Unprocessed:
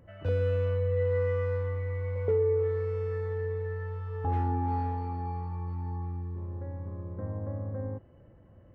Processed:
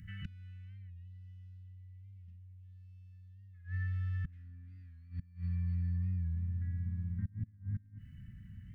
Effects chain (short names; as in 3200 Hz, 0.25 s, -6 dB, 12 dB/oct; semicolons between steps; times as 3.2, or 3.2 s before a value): flipped gate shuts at -26 dBFS, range -26 dB; elliptic band-stop 200–1800 Hz, stop band 50 dB; in parallel at +3 dB: compressor, threshold -50 dBFS, peak gain reduction 15.5 dB; on the sum: spectral gain 0.91–3.55, 280–2500 Hz -18 dB; record warp 45 rpm, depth 100 cents